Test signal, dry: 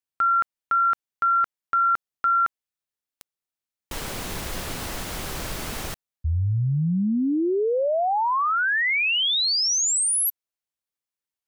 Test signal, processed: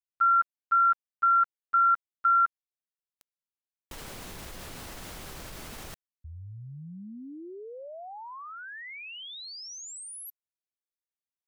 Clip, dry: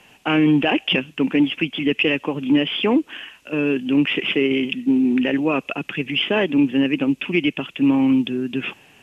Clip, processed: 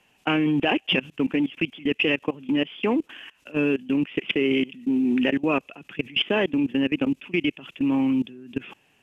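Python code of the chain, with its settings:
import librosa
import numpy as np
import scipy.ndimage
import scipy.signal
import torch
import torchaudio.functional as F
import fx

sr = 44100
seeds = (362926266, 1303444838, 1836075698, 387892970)

y = fx.level_steps(x, sr, step_db=21)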